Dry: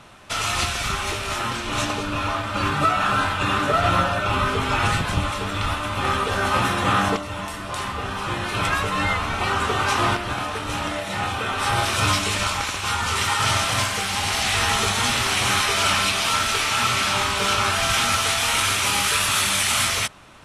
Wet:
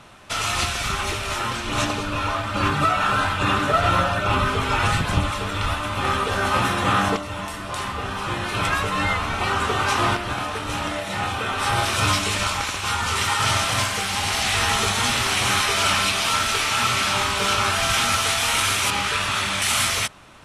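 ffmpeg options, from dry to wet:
-filter_complex "[0:a]asettb=1/sr,asplit=3[s0][s1][s2];[s0]atrim=end=0.994[s3];[s1]atrim=start=0.99:end=5.81,asetpts=PTS-STARTPTS,afade=t=in:d=0.004:c=qsin,afade=t=out:st=4.816:d=0.004:c=qsin,aphaser=in_gain=1:out_gain=1:delay=2.2:decay=0.21:speed=1.2:type=sinusoidal[s4];[s2]atrim=start=5.806[s5];[s3][s4]acrossfade=d=0.004:c1=hsin:c2=qsin[s6];[s6][s5]acrossfade=d=0.004:c1=qsin:c2=hsin,asettb=1/sr,asplit=3[s7][s8][s9];[s7]atrim=end=18.904[s10];[s8]atrim=start=18.9:end=19.62,asetpts=PTS-STARTPTS,afade=t=in:d=0.004:c=qsin,afade=t=out:st=0.716:d=0.004:c=qsin,aemphasis=mode=reproduction:type=50fm[s11];[s9]atrim=start=19.616[s12];[s10][s11]acrossfade=d=0.004:c1=hsin:c2=qsin[s13];[s13][s12]acrossfade=d=0.004:c1=qsin:c2=hsin"

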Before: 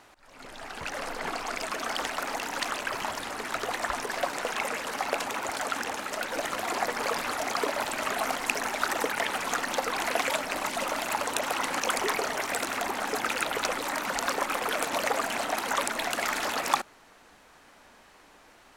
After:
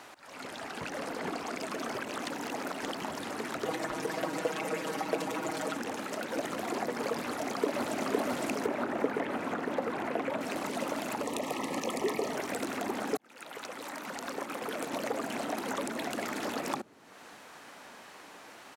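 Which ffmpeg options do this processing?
-filter_complex "[0:a]asettb=1/sr,asplit=3[s0][s1][s2];[s0]atrim=end=3.654[s3];[s1]atrim=start=3.65:end=5.77,asetpts=PTS-STARTPTS,afade=t=in:d=0.004:c=qsin,afade=t=out:st=2.116:d=0.004:c=qsin,aecho=1:1:6.3:0.94,atrim=end_sample=93492[s4];[s2]atrim=start=5.766[s5];[s3][s4]acrossfade=d=0.004:c1=hsin:c2=qsin[s6];[s6][s5]acrossfade=d=0.004:c1=qsin:c2=hsin,asplit=2[s7][s8];[s8]afade=t=in:st=7.22:d=0.01,afade=t=out:st=8.04:d=0.01,aecho=0:1:510|1020|1530|2040|2550|3060|3570|4080|4590|5100|5610|6120:0.891251|0.668438|0.501329|0.375996|0.281997|0.211498|0.158624|0.118968|0.0892257|0.0669193|0.0501895|0.0376421[s9];[s7][s9]amix=inputs=2:normalize=0,asettb=1/sr,asplit=3[s10][s11][s12];[s10]atrim=end=8.664[s13];[s11]atrim=start=8.66:end=10.41,asetpts=PTS-STARTPTS,afade=t=in:d=0.004:c=qsin,afade=t=out:st=1.746:d=0.004:c=qsin,acrossover=split=2600[s14][s15];[s15]acompressor=threshold=0.00447:ratio=4:attack=1:release=60[s16];[s14][s16]amix=inputs=2:normalize=0[s17];[s12]atrim=start=10.406[s18];[s13][s17]acrossfade=d=0.004:c1=hsin:c2=qsin[s19];[s19][s18]acrossfade=d=0.004:c1=qsin:c2=hsin,asettb=1/sr,asplit=3[s20][s21][s22];[s20]atrim=end=11.234[s23];[s21]atrim=start=11.23:end=12.31,asetpts=PTS-STARTPTS,afade=t=in:d=0.004:c=qsin,afade=t=out:st=1.076:d=0.004:c=qsin,asuperstop=centerf=1500:order=12:qfactor=4.1[s24];[s22]atrim=start=12.306[s25];[s23][s24]acrossfade=d=0.004:c1=hsin:c2=qsin[s26];[s26][s25]acrossfade=d=0.004:c1=qsin:c2=hsin,asplit=4[s27][s28][s29][s30];[s27]atrim=end=1.942[s31];[s28]atrim=start=1.938:end=2.962,asetpts=PTS-STARTPTS,areverse[s32];[s29]atrim=start=2.958:end=13.17,asetpts=PTS-STARTPTS,afade=t=out:st=10.208:d=0.004:c=hsin[s33];[s30]atrim=start=13.17,asetpts=PTS-STARTPTS,afade=t=in:d=2.46[s34];[s31][s32]acrossfade=d=0.004:c1=hsin:c2=hsin[s35];[s33][s34]concat=n=2:v=0:a=1[s36];[s35][s36]acrossfade=d=0.004:c1=hsin:c2=hsin,highpass=140,acrossover=split=440[s37][s38];[s38]acompressor=threshold=0.00447:ratio=3[s39];[s37][s39]amix=inputs=2:normalize=0,volume=1.88"

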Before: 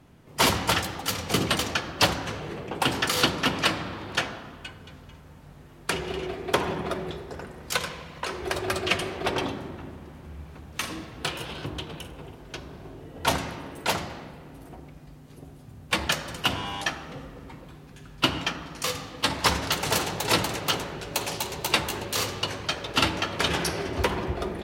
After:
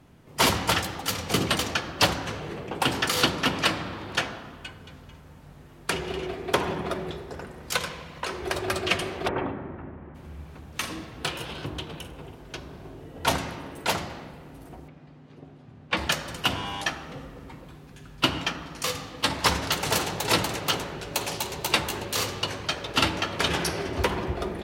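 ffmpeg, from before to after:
-filter_complex "[0:a]asplit=3[s0][s1][s2];[s0]afade=t=out:st=9.27:d=0.02[s3];[s1]lowpass=f=2100:w=0.5412,lowpass=f=2100:w=1.3066,afade=t=in:st=9.27:d=0.02,afade=t=out:st=10.14:d=0.02[s4];[s2]afade=t=in:st=10.14:d=0.02[s5];[s3][s4][s5]amix=inputs=3:normalize=0,asettb=1/sr,asplit=3[s6][s7][s8];[s6]atrim=end=14.884[s9];[s7]atrim=start=14.88:end=15.97,asetpts=PTS-STARTPTS,afade=t=in:d=0.004:c=qsin,afade=t=out:st=1.086:d=0.004:c=qsin,highpass=120,lowpass=3500[s10];[s8]atrim=start=15.966[s11];[s9][s10]acrossfade=d=0.004:c1=hsin:c2=qsin[s12];[s12][s11]acrossfade=d=0.004:c1=qsin:c2=hsin"

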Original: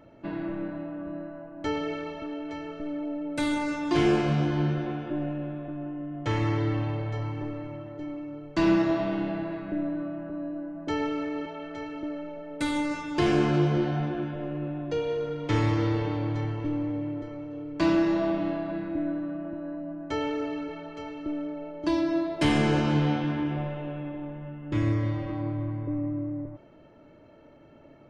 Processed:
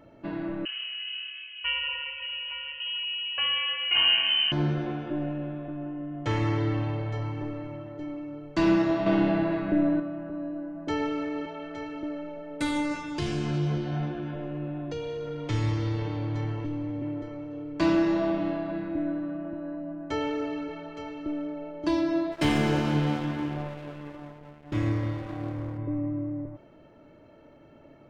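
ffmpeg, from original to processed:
-filter_complex "[0:a]asettb=1/sr,asplit=3[s0][s1][s2];[s0]atrim=end=0.654[s3];[s1]atrim=start=0.65:end=4.52,asetpts=PTS-STARTPTS,afade=t=in:d=0.004:c=qsin,afade=t=out:st=3.866:d=0.004:c=qsin,lowpass=f=2700:t=q:w=0.5098,lowpass=f=2700:t=q:w=0.6013,lowpass=f=2700:t=q:w=0.9,lowpass=f=2700:t=q:w=2.563,afreqshift=-3200[s4];[s2]atrim=start=4.516[s5];[s3][s4]acrossfade=d=0.004:c1=hsin:c2=qsin[s6];[s6][s5]acrossfade=d=0.004:c1=qsin:c2=hsin,asettb=1/sr,asplit=3[s7][s8][s9];[s7]atrim=end=9.064[s10];[s8]atrim=start=9.06:end=10,asetpts=PTS-STARTPTS,afade=t=in:d=0.004:c=qsin,afade=t=out:st=0.936:d=0.004:c=qsin,acontrast=62[s11];[s9]atrim=start=9.996[s12];[s10][s11]acrossfade=d=0.004:c1=hsin:c2=qsin[s13];[s13][s12]acrossfade=d=0.004:c1=qsin:c2=hsin,asettb=1/sr,asplit=3[s14][s15][s16];[s14]atrim=end=12.964[s17];[s15]atrim=start=12.96:end=17.02,asetpts=PTS-STARTPTS,afade=t=in:d=0.004:c=qsin,afade=t=out:st=4.056:d=0.004:c=qsin,acrossover=split=190|3000[s18][s19][s20];[s19]acompressor=threshold=0.0251:ratio=6:attack=3.2:release=140:knee=2.83:detection=peak[s21];[s18][s21][s20]amix=inputs=3:normalize=0[s22];[s16]atrim=start=17.016[s23];[s17][s22]acrossfade=d=0.004:c1=hsin:c2=qsin[s24];[s24][s23]acrossfade=d=0.004:c1=qsin:c2=hsin,asplit=3[s25][s26][s27];[s25]afade=t=out:st=22.31:d=0.02[s28];[s26]aeval=exprs='sgn(val(0))*max(abs(val(0))-0.0119,0)':c=same,afade=t=in:st=22.31:d=0.02,afade=t=out:st=25.77:d=0.02[s29];[s27]afade=t=in:st=25.77:d=0.02[s30];[s28][s29][s30]amix=inputs=3:normalize=0"

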